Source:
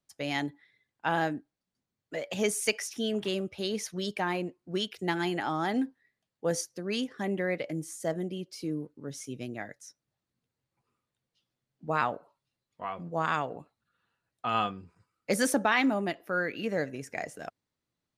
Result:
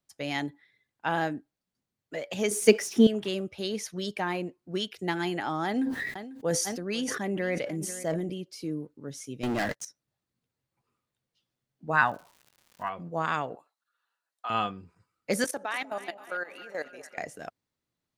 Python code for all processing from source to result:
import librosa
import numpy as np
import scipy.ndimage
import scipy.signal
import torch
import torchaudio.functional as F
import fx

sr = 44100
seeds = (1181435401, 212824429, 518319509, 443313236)

y = fx.chain(x, sr, fx.law_mismatch(coded='mu'),
    fx.low_shelf(hz=170.0, db=-5.0),
    fx.small_body(hz=(210.0, 370.0), ring_ms=35, db=17), at=(2.51, 3.07))
y = fx.chain(y, sr, fx.echo_feedback(ms=494, feedback_pct=27, wet_db=-18),
    fx.sustainer(db_per_s=34.0), at=(5.66, 8.34))
y = fx.chain(y, sr, fx.lowpass(hz=9100.0, slope=12),
    fx.high_shelf(hz=3500.0, db=-5.0),
    fx.leveller(passes=5), at=(9.43, 9.85))
y = fx.peak_eq(y, sr, hz=1500.0, db=14.0, octaves=0.33, at=(11.92, 12.88), fade=0.02)
y = fx.comb(y, sr, ms=1.1, depth=0.54, at=(11.92, 12.88), fade=0.02)
y = fx.dmg_crackle(y, sr, seeds[0], per_s=240.0, level_db=-45.0, at=(11.92, 12.88), fade=0.02)
y = fx.chain(y, sr, fx.highpass(hz=860.0, slope=12),
    fx.peak_eq(hz=2400.0, db=-6.0, octaves=1.0), at=(13.55, 14.5))
y = fx.chain(y, sr, fx.highpass(hz=470.0, slope=12),
    fx.level_steps(step_db=16),
    fx.echo_split(split_hz=730.0, low_ms=193, high_ms=265, feedback_pct=52, wet_db=-14.0), at=(15.44, 17.18))